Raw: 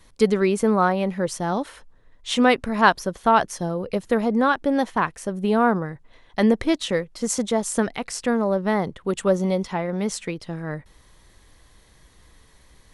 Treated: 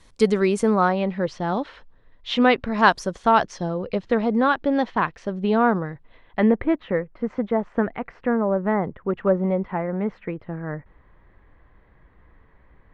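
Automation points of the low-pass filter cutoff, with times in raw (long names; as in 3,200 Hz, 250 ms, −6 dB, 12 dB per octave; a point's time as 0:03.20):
low-pass filter 24 dB per octave
0:00.64 9,400 Hz
0:01.05 4,300 Hz
0:02.67 4,300 Hz
0:02.94 9,700 Hz
0:03.75 4,400 Hz
0:05.87 4,400 Hz
0:06.72 2,000 Hz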